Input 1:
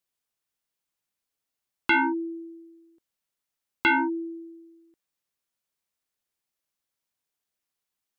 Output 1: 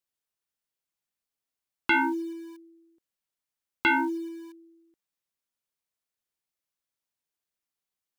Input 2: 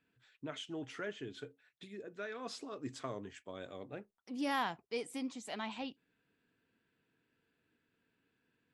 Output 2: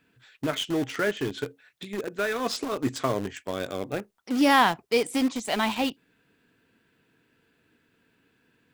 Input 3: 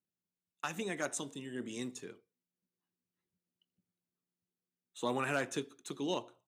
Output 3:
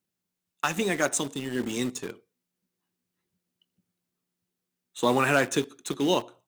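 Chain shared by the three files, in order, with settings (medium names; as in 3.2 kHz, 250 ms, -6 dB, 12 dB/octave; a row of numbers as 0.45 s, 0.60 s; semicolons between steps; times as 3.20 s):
in parallel at -8 dB: bit crusher 7-bit; on the sum: normalise loudness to -27 LUFS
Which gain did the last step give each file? -4.5 dB, +12.5 dB, +8.5 dB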